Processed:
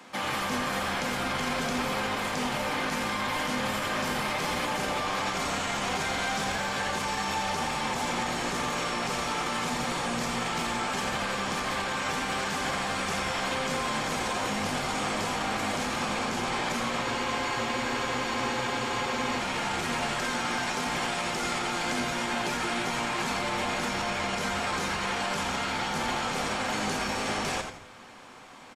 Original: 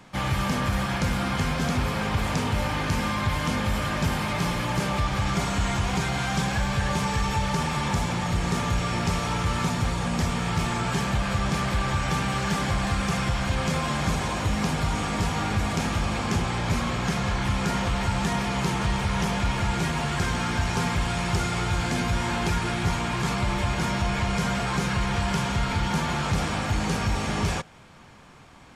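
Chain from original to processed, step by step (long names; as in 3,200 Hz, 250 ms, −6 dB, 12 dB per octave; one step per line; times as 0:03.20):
Bessel high-pass filter 290 Hz, order 8
brickwall limiter −24.5 dBFS, peak gain reduction 9 dB
echo with shifted repeats 85 ms, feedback 33%, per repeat −110 Hz, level −7 dB
on a send at −11 dB: convolution reverb RT60 0.55 s, pre-delay 4 ms
on the sum: frozen spectrum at 0:17.04, 2.35 s
level +2.5 dB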